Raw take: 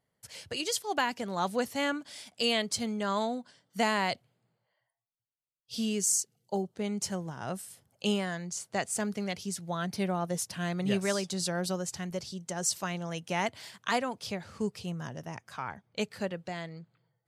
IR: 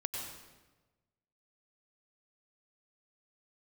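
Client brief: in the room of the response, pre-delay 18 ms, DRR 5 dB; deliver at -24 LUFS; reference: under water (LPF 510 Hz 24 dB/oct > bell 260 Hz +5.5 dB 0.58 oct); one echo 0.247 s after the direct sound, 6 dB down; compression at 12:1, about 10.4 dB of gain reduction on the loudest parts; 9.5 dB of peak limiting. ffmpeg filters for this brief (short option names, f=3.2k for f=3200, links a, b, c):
-filter_complex "[0:a]acompressor=threshold=-34dB:ratio=12,alimiter=level_in=5.5dB:limit=-24dB:level=0:latency=1,volume=-5.5dB,aecho=1:1:247:0.501,asplit=2[a][b];[1:a]atrim=start_sample=2205,adelay=18[c];[b][c]afir=irnorm=-1:irlink=0,volume=-7dB[d];[a][d]amix=inputs=2:normalize=0,lowpass=f=510:w=0.5412,lowpass=f=510:w=1.3066,equalizer=f=260:t=o:w=0.58:g=5.5,volume=16dB"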